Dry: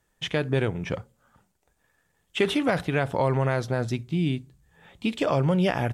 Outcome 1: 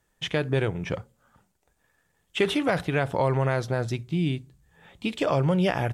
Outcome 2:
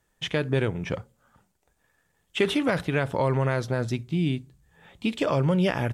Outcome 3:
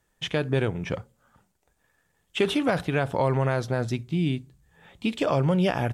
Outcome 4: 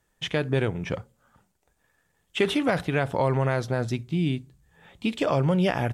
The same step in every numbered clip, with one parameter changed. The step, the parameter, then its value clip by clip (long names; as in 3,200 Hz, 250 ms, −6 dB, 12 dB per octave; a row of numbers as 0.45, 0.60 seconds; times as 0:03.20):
dynamic equaliser, frequency: 240, 740, 2,000, 6,900 Hertz